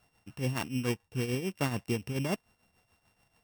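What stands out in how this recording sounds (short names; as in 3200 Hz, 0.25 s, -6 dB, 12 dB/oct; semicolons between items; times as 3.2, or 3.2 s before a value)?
a buzz of ramps at a fixed pitch in blocks of 16 samples; tremolo triangle 6.9 Hz, depth 70%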